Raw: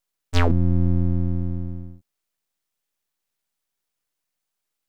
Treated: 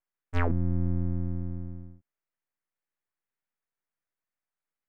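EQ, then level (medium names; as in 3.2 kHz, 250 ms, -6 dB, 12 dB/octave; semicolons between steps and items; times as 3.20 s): resonant high shelf 2.8 kHz -12 dB, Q 1.5; -8.0 dB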